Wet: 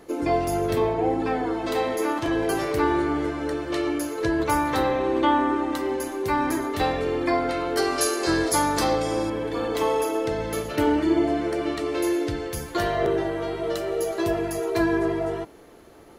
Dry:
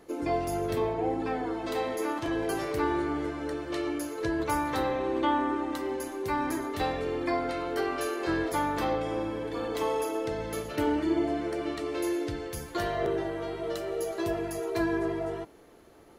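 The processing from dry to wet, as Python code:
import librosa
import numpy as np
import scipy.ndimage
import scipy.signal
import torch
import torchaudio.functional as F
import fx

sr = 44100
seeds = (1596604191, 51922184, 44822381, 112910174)

y = fx.band_shelf(x, sr, hz=7000.0, db=11.5, octaves=1.7, at=(7.77, 9.3))
y = y * librosa.db_to_amplitude(6.0)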